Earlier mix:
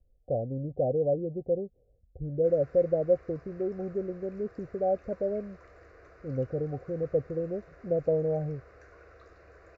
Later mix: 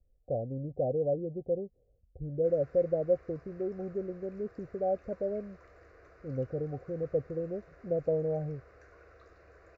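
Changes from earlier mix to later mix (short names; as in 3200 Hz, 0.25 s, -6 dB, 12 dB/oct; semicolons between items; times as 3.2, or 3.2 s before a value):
speech -3.0 dB; background -3.0 dB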